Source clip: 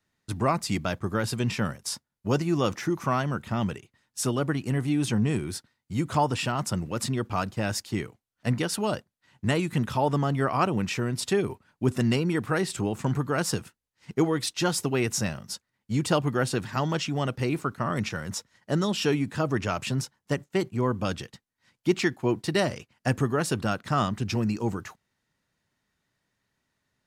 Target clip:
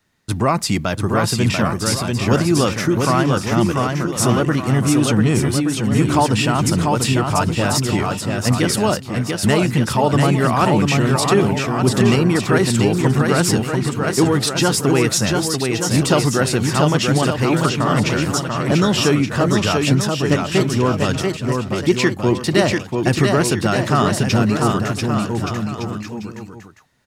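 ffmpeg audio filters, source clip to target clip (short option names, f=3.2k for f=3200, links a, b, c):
-filter_complex "[0:a]asplit=2[a][b];[b]alimiter=limit=-21.5dB:level=0:latency=1,volume=1.5dB[c];[a][c]amix=inputs=2:normalize=0,aecho=1:1:690|1173|1511|1748|1913:0.631|0.398|0.251|0.158|0.1,volume=4dB"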